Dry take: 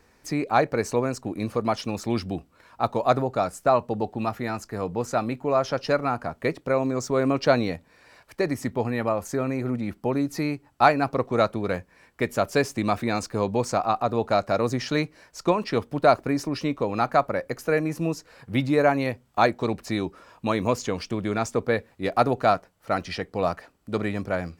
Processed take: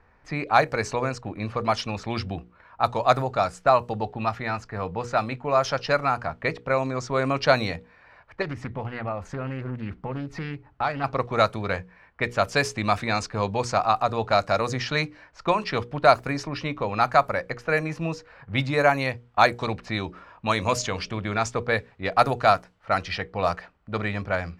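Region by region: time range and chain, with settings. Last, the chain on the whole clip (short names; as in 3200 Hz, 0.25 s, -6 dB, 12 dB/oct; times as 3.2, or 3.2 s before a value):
8.42–11.04 compressor 2:1, threshold -33 dBFS + low shelf 360 Hz +5.5 dB + Doppler distortion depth 0.32 ms
20.04–21.2 high shelf 3800 Hz +4.5 dB + de-hum 68.33 Hz, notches 9
whole clip: bell 310 Hz -11 dB 1.9 oct; low-pass opened by the level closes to 1500 Hz, open at -21.5 dBFS; notches 60/120/180/240/300/360/420/480 Hz; gain +5.5 dB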